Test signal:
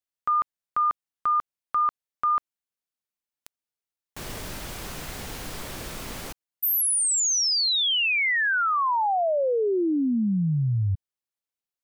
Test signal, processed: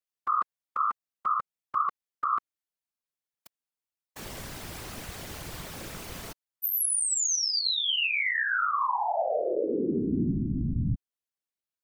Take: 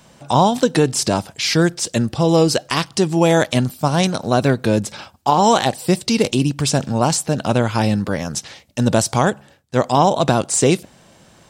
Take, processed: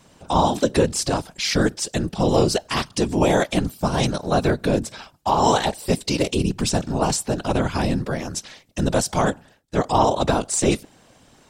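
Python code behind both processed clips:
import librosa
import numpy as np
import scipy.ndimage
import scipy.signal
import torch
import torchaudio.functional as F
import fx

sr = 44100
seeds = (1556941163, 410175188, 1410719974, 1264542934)

y = fx.whisperise(x, sr, seeds[0])
y = F.gain(torch.from_numpy(y), -4.0).numpy()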